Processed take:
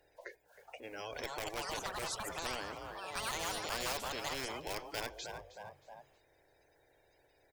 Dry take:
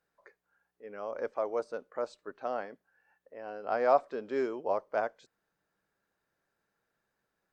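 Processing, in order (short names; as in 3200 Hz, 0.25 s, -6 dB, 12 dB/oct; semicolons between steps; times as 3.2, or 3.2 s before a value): bin magnitudes rounded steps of 30 dB; in parallel at -11.5 dB: Schmitt trigger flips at -25.5 dBFS; on the sum: fixed phaser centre 500 Hz, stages 4; on a send: frequency-shifting echo 0.314 s, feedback 34%, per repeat +44 Hz, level -16.5 dB; on the sum: echoes that change speed 0.542 s, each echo +5 st, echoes 2; spectral compressor 4:1; gain -6 dB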